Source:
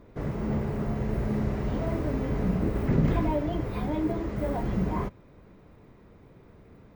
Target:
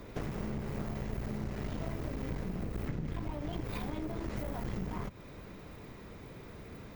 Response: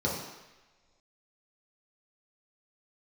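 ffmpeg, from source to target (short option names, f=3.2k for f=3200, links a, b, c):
-filter_complex "[0:a]acrossover=split=220[a][b];[b]acompressor=threshold=-34dB:ratio=6[c];[a][c]amix=inputs=2:normalize=0,highshelf=f=2.1k:g=11.5,acompressor=threshold=-36dB:ratio=6,aeval=exprs='clip(val(0),-1,0.00562)':c=same,volume=4dB"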